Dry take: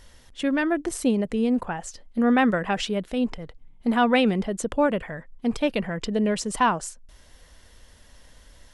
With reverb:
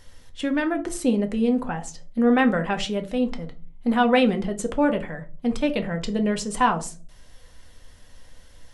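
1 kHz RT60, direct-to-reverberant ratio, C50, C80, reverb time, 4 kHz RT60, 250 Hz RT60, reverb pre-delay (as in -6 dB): 0.30 s, 5.5 dB, 16.0 dB, 22.0 dB, 0.40 s, 0.20 s, 0.55 s, 4 ms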